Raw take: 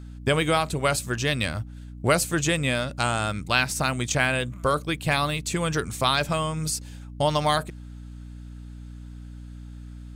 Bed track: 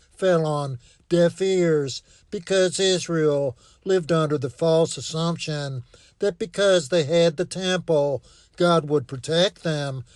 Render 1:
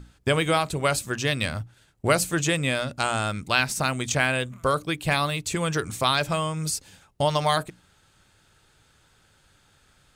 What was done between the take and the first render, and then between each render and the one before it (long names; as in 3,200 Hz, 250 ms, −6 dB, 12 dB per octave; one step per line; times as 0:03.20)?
mains-hum notches 60/120/180/240/300 Hz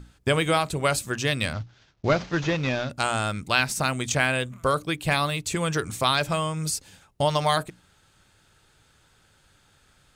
0:01.53–0:02.90: variable-slope delta modulation 32 kbit/s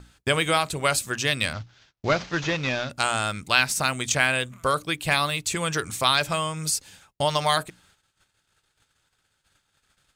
noise gate −58 dBFS, range −18 dB
tilt shelving filter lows −3.5 dB, about 850 Hz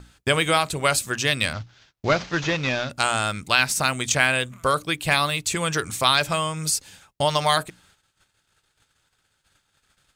level +2 dB
brickwall limiter −2 dBFS, peak gain reduction 2.5 dB